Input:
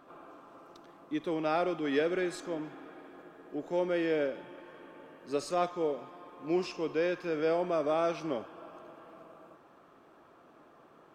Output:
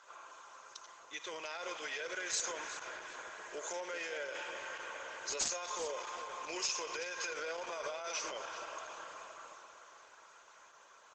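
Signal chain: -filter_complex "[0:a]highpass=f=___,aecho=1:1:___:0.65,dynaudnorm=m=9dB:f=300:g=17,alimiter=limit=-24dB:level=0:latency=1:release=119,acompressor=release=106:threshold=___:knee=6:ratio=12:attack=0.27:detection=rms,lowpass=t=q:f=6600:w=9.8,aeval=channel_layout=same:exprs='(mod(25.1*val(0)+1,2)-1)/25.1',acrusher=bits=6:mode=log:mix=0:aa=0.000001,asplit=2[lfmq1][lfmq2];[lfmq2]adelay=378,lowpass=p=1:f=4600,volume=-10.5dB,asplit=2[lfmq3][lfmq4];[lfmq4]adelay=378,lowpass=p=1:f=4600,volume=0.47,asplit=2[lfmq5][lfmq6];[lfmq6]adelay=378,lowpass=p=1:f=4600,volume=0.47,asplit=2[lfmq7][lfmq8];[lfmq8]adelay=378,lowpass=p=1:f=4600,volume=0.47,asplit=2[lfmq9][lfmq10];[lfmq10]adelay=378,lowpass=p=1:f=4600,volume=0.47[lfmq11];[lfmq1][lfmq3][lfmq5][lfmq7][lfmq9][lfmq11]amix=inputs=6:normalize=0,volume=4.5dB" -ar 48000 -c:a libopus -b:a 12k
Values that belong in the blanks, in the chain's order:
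1200, 2, -38dB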